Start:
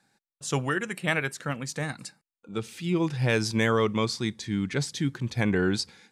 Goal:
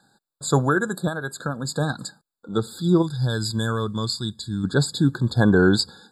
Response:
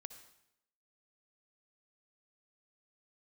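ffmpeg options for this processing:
-filter_complex "[0:a]asettb=1/sr,asplit=3[link_01][link_02][link_03];[link_01]atrim=end=1.074[link_04];[link_02]atrim=start=1.07:end=1.65,asetpts=PTS-STARTPTS,afade=type=in:duration=0.004:curve=qsin,afade=type=out:start_time=0.576:duration=0.004:curve=qsin,acompressor=threshold=-31dB:ratio=6[link_05];[link_03]atrim=start=1.646[link_06];[link_04][link_05]acrossfade=duration=0.004:curve1=hsin:curve2=qsin[link_07];[link_07][link_06]acrossfade=duration=0.004:curve1=qsin:curve2=hsin,asplit=3[link_08][link_09][link_10];[link_08]afade=type=out:start_time=3.01:duration=0.02[link_11];[link_09]equalizer=frequency=560:width=0.33:gain=-13.5,afade=type=in:start_time=3.01:duration=0.02,afade=type=out:start_time=4.63:duration=0.02[link_12];[link_10]afade=type=in:start_time=4.63:duration=0.02[link_13];[link_11][link_12][link_13]amix=inputs=3:normalize=0,afftfilt=real='re*eq(mod(floor(b*sr/1024/1700),2),0)':imag='im*eq(mod(floor(b*sr/1024/1700),2),0)':win_size=1024:overlap=0.75,volume=8.5dB"

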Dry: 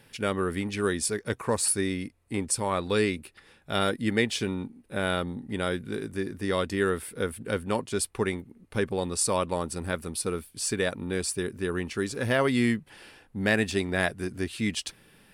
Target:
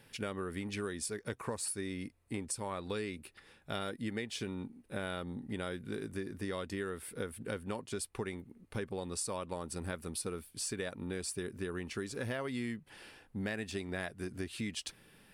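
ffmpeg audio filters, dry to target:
ffmpeg -i in.wav -af "acompressor=threshold=-31dB:ratio=6,volume=-4dB" out.wav

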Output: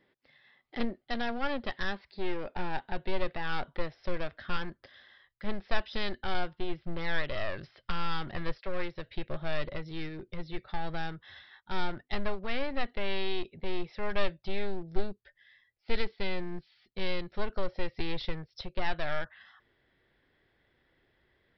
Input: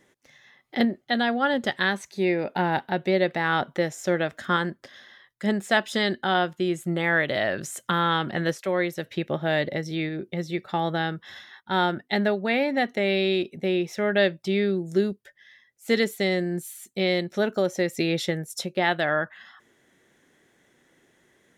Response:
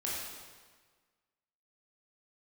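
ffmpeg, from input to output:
-af "aresample=11025,aeval=exprs='clip(val(0),-1,0.0398)':channel_layout=same,aresample=44100,asubboost=boost=8.5:cutoff=68,volume=-7.5dB"

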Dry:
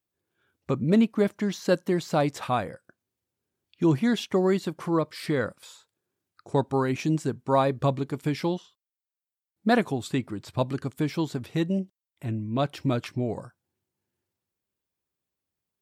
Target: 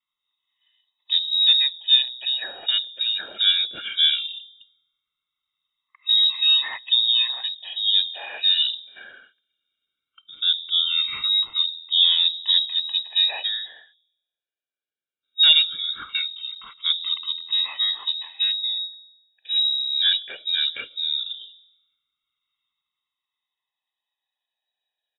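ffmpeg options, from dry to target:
ffmpeg -i in.wav -filter_complex "[0:a]afftfilt=real='re*pow(10,21/40*sin(2*PI*(1.7*log(max(b,1)*sr/1024/100)/log(2)-(0.28)*(pts-256)/sr)))':imag='im*pow(10,21/40*sin(2*PI*(1.7*log(max(b,1)*sr/1024/100)/log(2)-(0.28)*(pts-256)/sr)))':win_size=1024:overlap=0.75,bandreject=frequency=65.95:width_type=h:width=4,bandreject=frequency=131.9:width_type=h:width=4,bandreject=frequency=197.85:width_type=h:width=4,bandreject=frequency=263.8:width_type=h:width=4,bandreject=frequency=329.75:width_type=h:width=4,bandreject=frequency=395.7:width_type=h:width=4,bandreject=frequency=461.65:width_type=h:width=4,bandreject=frequency=527.6:width_type=h:width=4,bandreject=frequency=593.55:width_type=h:width=4,bandreject=frequency=659.5:width_type=h:width=4,bandreject=frequency=725.45:width_type=h:width=4,bandreject=frequency=791.4:width_type=h:width=4,bandreject=frequency=857.35:width_type=h:width=4,bandreject=frequency=923.3:width_type=h:width=4,bandreject=frequency=989.25:width_type=h:width=4,bandreject=frequency=1055.2:width_type=h:width=4,bandreject=frequency=1121.15:width_type=h:width=4,bandreject=frequency=1187.1:width_type=h:width=4,bandreject=frequency=1253.05:width_type=h:width=4,bandreject=frequency=1319:width_type=h:width=4,acrossover=split=310|680|1900[link_01][link_02][link_03][link_04];[link_04]aeval=exprs='0.0596*(abs(mod(val(0)/0.0596+3,4)-2)-1)':channel_layout=same[link_05];[link_01][link_02][link_03][link_05]amix=inputs=4:normalize=0,asetrate=27695,aresample=44100,lowpass=frequency=3300:width_type=q:width=0.5098,lowpass=frequency=3300:width_type=q:width=0.6013,lowpass=frequency=3300:width_type=q:width=0.9,lowpass=frequency=3300:width_type=q:width=2.563,afreqshift=-3900" out.wav

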